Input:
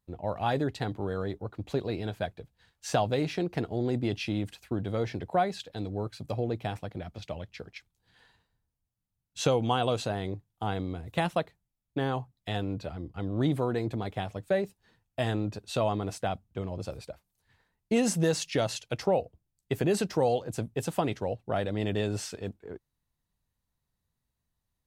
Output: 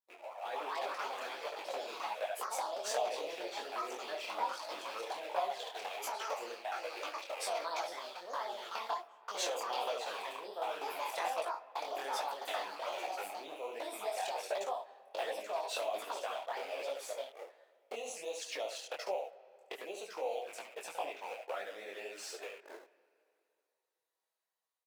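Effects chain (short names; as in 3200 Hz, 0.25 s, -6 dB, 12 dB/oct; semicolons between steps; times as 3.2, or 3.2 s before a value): rattling part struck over -38 dBFS, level -31 dBFS; in parallel at -11 dB: requantised 6-bit, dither none; on the sum: tilt shelf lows +3 dB, about 1100 Hz; echo 71 ms -7 dB; envelope flanger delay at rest 6.3 ms, full sweep at -18.5 dBFS; compressor 4:1, threshold -34 dBFS, peak gain reduction 14.5 dB; echoes that change speed 0.38 s, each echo +5 st, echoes 2; HPF 570 Hz 24 dB/oct; AGC gain up to 9.5 dB; on a send at -17.5 dB: LPF 2400 Hz + reverb RT60 2.5 s, pre-delay 45 ms; on the sum: detuned doubles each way 45 cents; gain -3.5 dB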